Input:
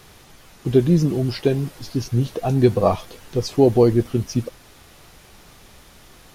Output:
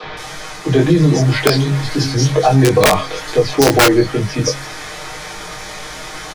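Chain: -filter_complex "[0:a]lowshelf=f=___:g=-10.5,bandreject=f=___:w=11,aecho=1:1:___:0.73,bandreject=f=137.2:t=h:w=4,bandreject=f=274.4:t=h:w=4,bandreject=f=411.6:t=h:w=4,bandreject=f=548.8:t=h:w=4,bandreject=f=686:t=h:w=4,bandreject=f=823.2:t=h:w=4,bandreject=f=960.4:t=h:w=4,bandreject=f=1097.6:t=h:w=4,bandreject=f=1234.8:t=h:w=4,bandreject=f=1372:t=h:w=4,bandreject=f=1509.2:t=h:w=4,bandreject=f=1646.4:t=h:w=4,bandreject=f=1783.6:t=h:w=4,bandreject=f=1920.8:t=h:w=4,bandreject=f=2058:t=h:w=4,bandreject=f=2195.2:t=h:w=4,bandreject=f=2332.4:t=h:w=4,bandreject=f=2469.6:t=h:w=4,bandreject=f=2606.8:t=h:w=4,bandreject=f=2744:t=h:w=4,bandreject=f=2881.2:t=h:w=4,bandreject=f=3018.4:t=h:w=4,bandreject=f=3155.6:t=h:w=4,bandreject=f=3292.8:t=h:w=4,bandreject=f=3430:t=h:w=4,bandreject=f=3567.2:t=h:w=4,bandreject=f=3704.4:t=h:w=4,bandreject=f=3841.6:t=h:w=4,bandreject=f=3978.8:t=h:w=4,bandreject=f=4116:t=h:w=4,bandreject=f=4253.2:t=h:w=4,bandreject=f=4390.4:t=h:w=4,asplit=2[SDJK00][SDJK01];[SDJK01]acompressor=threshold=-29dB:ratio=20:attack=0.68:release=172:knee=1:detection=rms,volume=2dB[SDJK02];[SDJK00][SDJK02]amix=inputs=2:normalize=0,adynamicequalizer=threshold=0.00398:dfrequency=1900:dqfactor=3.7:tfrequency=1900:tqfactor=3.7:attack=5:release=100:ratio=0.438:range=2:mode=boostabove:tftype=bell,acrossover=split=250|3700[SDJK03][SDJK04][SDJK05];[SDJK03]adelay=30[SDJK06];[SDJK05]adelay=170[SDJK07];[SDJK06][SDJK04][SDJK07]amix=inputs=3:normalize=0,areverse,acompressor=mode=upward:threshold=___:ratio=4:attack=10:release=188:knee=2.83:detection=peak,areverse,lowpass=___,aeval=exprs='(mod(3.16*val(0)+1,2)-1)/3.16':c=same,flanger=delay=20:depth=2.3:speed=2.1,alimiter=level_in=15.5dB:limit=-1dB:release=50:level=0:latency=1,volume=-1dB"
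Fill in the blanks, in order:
310, 2800, 6.5, -35dB, 7000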